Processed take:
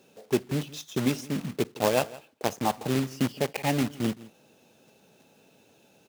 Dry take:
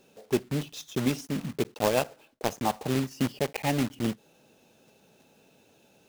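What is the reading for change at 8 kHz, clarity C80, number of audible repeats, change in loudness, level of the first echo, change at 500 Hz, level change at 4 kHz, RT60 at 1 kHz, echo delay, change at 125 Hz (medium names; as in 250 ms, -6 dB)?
+1.0 dB, no reverb, 1, +1.0 dB, -19.5 dB, +1.0 dB, +1.0 dB, no reverb, 165 ms, +0.5 dB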